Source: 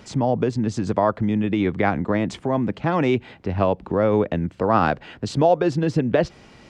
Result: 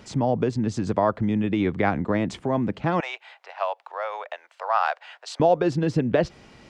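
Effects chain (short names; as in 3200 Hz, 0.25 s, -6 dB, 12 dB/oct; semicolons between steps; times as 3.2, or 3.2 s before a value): 3–5.4 steep high-pass 660 Hz 36 dB/oct; gain -2 dB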